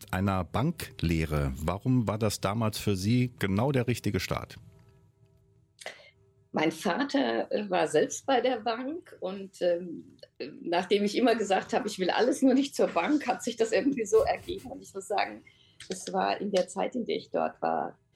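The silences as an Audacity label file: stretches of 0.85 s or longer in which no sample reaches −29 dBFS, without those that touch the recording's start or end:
4.510000	5.820000	silence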